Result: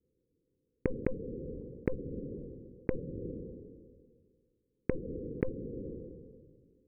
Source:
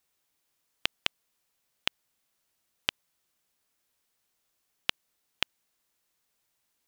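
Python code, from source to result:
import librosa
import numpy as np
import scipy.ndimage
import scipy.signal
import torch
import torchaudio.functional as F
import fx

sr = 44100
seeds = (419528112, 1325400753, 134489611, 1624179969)

y = scipy.signal.sosfilt(scipy.signal.cheby1(8, 1.0, 520.0, 'lowpass', fs=sr, output='sos'), x)
y = fx.cheby_harmonics(y, sr, harmonics=(5, 7, 8), levels_db=(-22, -22, -29), full_scale_db=-28.5)
y = fx.sustainer(y, sr, db_per_s=30.0)
y = y * 10.0 ** (15.5 / 20.0)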